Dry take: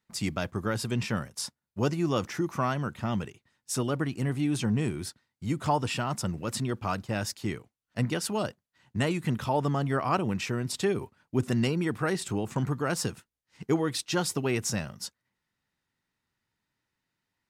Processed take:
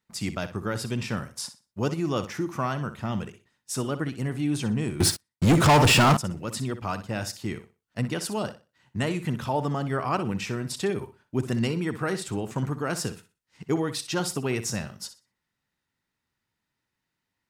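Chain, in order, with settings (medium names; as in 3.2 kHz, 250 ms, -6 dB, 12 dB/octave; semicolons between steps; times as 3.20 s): on a send: flutter echo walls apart 10.5 m, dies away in 0.3 s; 5.00–6.17 s: on the sum: waveshaping leveller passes 5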